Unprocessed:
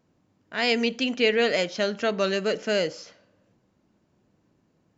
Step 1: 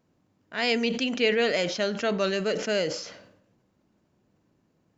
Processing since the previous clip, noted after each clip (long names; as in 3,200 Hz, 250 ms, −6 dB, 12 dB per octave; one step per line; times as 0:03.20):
level that may fall only so fast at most 67 dB per second
level −2 dB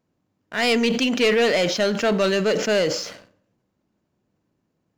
leveller curve on the samples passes 2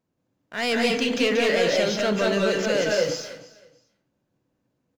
repeating echo 319 ms, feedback 24%, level −19 dB
convolution reverb RT60 0.30 s, pre-delay 176 ms, DRR −1 dB
level −5 dB